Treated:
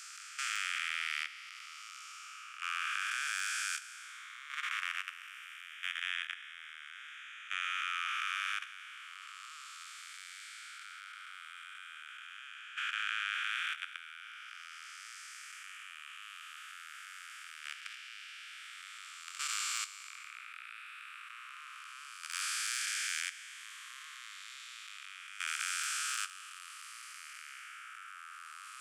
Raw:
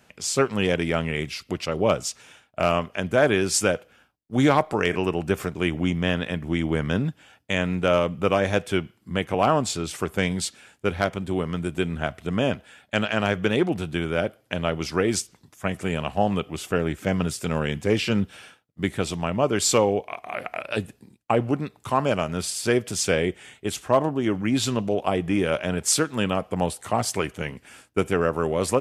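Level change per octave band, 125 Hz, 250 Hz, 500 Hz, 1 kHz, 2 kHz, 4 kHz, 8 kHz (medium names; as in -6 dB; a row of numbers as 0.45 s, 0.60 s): under -40 dB, under -40 dB, under -40 dB, -16.0 dB, -7.5 dB, -8.5 dB, -11.0 dB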